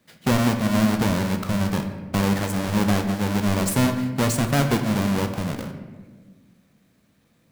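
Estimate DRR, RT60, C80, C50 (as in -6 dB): 6.0 dB, 1.5 s, 9.5 dB, 8.0 dB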